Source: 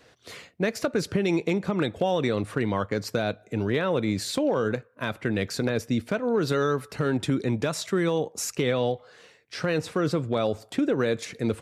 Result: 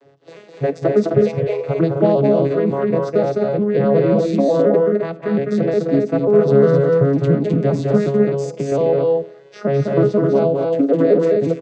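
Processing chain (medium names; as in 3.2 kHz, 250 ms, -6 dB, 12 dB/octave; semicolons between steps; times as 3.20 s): vocoder on a broken chord minor triad, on C#3, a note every 179 ms; 1.21–1.65 s: steep high-pass 420 Hz 96 dB/octave; 8.08–8.72 s: compression, threshold -28 dBFS, peak gain reduction 8 dB; peaking EQ 550 Hz +8.5 dB 1.3 oct; loudspeakers at several distances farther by 71 m -4 dB, 89 m -4 dB; on a send at -18 dB: reverberation RT60 0.70 s, pre-delay 3 ms; on the sum: trim +5 dB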